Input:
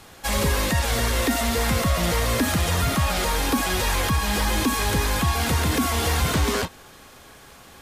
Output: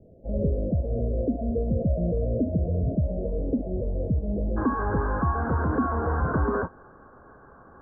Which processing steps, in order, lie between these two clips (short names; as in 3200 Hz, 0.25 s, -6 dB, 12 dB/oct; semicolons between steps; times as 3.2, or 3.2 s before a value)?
rippled Chebyshev low-pass 660 Hz, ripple 3 dB, from 4.56 s 1600 Hz